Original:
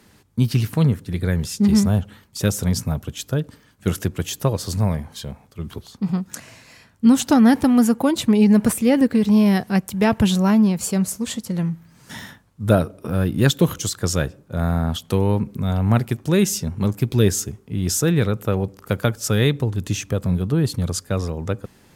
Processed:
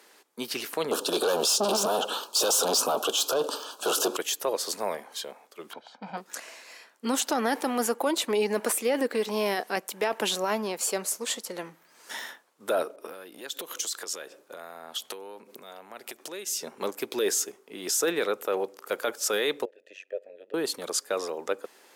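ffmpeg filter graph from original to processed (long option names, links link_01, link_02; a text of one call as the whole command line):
ffmpeg -i in.wav -filter_complex "[0:a]asettb=1/sr,asplit=3[link_01][link_02][link_03];[link_01]atrim=end=0.914[link_04];[link_02]atrim=start=0.91:end=4.17,asetpts=PTS-STARTPTS,afade=type=in:duration=0.004:curve=qsin,afade=type=out:start_time=3.256:duration=0.004:curve=qsin,asplit=2[link_05][link_06];[link_06]highpass=frequency=720:poles=1,volume=30dB,asoftclip=type=tanh:threshold=-4dB[link_07];[link_05][link_07]amix=inputs=2:normalize=0,lowpass=frequency=4500:poles=1,volume=-6dB,asuperstop=centerf=2000:order=4:qfactor=1.2[link_08];[link_03]atrim=start=4.166[link_09];[link_04][link_08]acrossfade=duration=0.004:curve1=hsin:curve2=qsin[link_10];[link_10][link_09]acrossfade=duration=0.004:curve1=qsin:curve2=hsin,asettb=1/sr,asplit=3[link_11][link_12][link_13];[link_11]atrim=end=5.734[link_14];[link_12]atrim=start=5.73:end=6.17,asetpts=PTS-STARTPTS,afade=type=in:duration=0.004:curve=qsin,afade=type=out:start_time=0.436:duration=0.004:curve=qsin,highpass=100,lowpass=2600,aecho=1:1:1.3:0.96,atrim=end_sample=19404[link_15];[link_13]atrim=start=6.166[link_16];[link_14][link_15]acrossfade=duration=0.004:curve1=hsin:curve2=qsin[link_17];[link_17][link_16]acrossfade=duration=0.004:curve1=qsin:curve2=hsin,asettb=1/sr,asplit=3[link_18][link_19][link_20];[link_18]atrim=end=12.964[link_21];[link_19]atrim=start=12.96:end=16.62,asetpts=PTS-STARTPTS,afade=type=in:duration=0.004:curve=qsin,afade=type=out:start_time=3.656:duration=0.004:curve=qsin,acompressor=threshold=-29dB:ratio=16:attack=3.2:release=140:knee=1:detection=peak,adynamicequalizer=threshold=0.00251:dfrequency=1900:dqfactor=0.7:tfrequency=1900:tqfactor=0.7:attack=5:release=100:ratio=0.375:range=2:mode=boostabove:tftype=highshelf[link_22];[link_20]atrim=start=16.616[link_23];[link_21][link_22]acrossfade=duration=0.004:curve1=hsin:curve2=qsin[link_24];[link_24][link_23]acrossfade=duration=0.004:curve1=qsin:curve2=hsin,asettb=1/sr,asplit=3[link_25][link_26][link_27];[link_25]atrim=end=19.654[link_28];[link_26]atrim=start=19.65:end=20.54,asetpts=PTS-STARTPTS,afade=type=in:duration=0.004:curve=qsin,afade=type=out:start_time=0.886:duration=0.004:curve=qsin,asplit=3[link_29][link_30][link_31];[link_29]bandpass=frequency=530:width_type=q:width=8,volume=0dB[link_32];[link_30]bandpass=frequency=1840:width_type=q:width=8,volume=-6dB[link_33];[link_31]bandpass=frequency=2480:width_type=q:width=8,volume=-9dB[link_34];[link_32][link_33][link_34]amix=inputs=3:normalize=0,tremolo=f=94:d=0.889[link_35];[link_27]atrim=start=20.536[link_36];[link_28][link_35]acrossfade=duration=0.004:curve1=hsin:curve2=qsin[link_37];[link_37][link_36]acrossfade=duration=0.004:curve1=qsin:curve2=hsin,highpass=frequency=390:width=0.5412,highpass=frequency=390:width=1.3066,alimiter=limit=-17dB:level=0:latency=1:release=11" out.wav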